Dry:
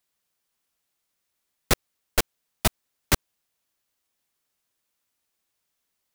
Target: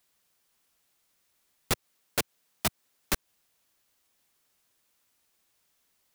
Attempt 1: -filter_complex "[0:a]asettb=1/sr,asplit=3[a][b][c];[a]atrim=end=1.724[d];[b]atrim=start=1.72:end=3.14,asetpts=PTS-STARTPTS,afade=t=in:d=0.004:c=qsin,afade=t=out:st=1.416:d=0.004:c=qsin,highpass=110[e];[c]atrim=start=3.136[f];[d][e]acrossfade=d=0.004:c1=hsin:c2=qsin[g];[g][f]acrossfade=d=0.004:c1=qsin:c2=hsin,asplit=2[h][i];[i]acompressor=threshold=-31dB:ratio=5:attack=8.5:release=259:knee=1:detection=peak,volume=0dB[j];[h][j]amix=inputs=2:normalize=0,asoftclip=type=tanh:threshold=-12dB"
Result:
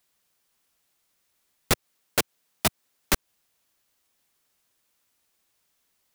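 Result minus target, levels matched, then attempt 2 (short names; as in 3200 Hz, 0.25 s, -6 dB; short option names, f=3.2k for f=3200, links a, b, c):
soft clip: distortion -7 dB
-filter_complex "[0:a]asettb=1/sr,asplit=3[a][b][c];[a]atrim=end=1.724[d];[b]atrim=start=1.72:end=3.14,asetpts=PTS-STARTPTS,afade=t=in:d=0.004:c=qsin,afade=t=out:st=1.416:d=0.004:c=qsin,highpass=110[e];[c]atrim=start=3.136[f];[d][e]acrossfade=d=0.004:c1=hsin:c2=qsin[g];[g][f]acrossfade=d=0.004:c1=qsin:c2=hsin,asplit=2[h][i];[i]acompressor=threshold=-31dB:ratio=5:attack=8.5:release=259:knee=1:detection=peak,volume=0dB[j];[h][j]amix=inputs=2:normalize=0,asoftclip=type=tanh:threshold=-21dB"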